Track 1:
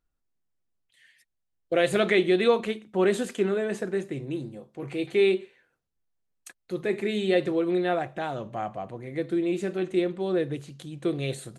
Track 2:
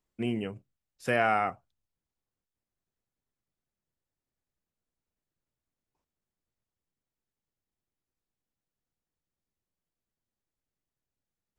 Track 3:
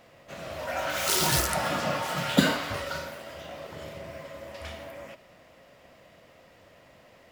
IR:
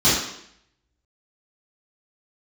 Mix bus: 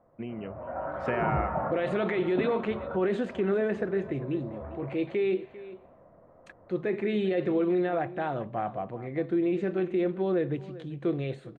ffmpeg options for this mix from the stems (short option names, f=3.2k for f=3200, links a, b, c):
-filter_complex "[0:a]alimiter=limit=-20dB:level=0:latency=1:release=28,volume=-6dB,asplit=3[a][b][c];[b]volume=-17dB[d];[1:a]acompressor=threshold=-31dB:ratio=6,volume=-2.5dB,asplit=2[e][f];[f]volume=-21.5dB[g];[2:a]lowpass=f=1.2k:w=0.5412,lowpass=f=1.2k:w=1.3066,volume=-7dB[h];[c]apad=whole_len=322780[i];[h][i]sidechaincompress=threshold=-41dB:ratio=8:attack=16:release=142[j];[d][g]amix=inputs=2:normalize=0,aecho=0:1:396:1[k];[a][e][j][k]amix=inputs=4:normalize=0,dynaudnorm=f=110:g=13:m=7dB,lowpass=2.2k"